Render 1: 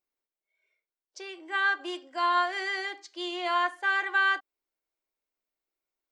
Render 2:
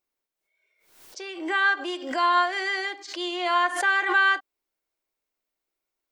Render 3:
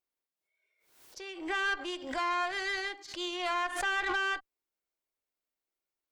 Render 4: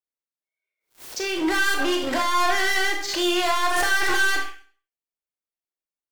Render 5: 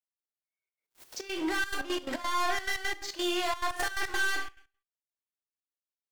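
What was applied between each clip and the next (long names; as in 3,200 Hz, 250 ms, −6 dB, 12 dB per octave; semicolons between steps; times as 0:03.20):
background raised ahead of every attack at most 79 dB per second; level +4 dB
brickwall limiter −16 dBFS, peak gain reduction 6 dB; tube saturation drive 22 dB, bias 0.8; level −2 dB
leveller curve on the samples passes 5; sound drawn into the spectrogram noise, 0:04.06–0:04.51, 1,400–3,400 Hz −46 dBFS; four-comb reverb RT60 0.42 s, combs from 25 ms, DRR 3 dB
gate pattern "x.x.xxxx.x." 174 BPM −12 dB; level −8 dB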